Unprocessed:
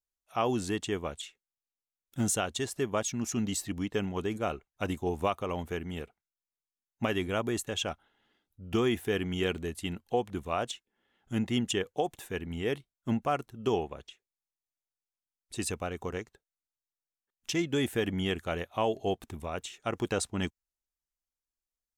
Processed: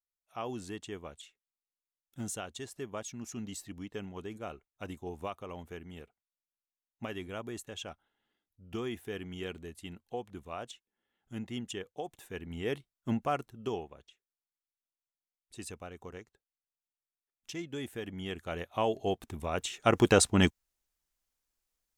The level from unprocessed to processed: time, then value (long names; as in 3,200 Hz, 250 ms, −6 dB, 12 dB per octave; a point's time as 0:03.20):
0:12.00 −9.5 dB
0:12.76 −2 dB
0:13.43 −2 dB
0:13.90 −10 dB
0:18.12 −10 dB
0:18.77 −1 dB
0:19.27 −1 dB
0:19.90 +8 dB